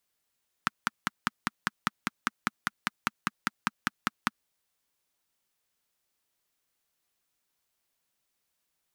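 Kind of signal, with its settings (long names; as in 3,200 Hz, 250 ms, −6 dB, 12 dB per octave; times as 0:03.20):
pulse-train model of a single-cylinder engine, steady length 3.67 s, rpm 600, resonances 220/1,300 Hz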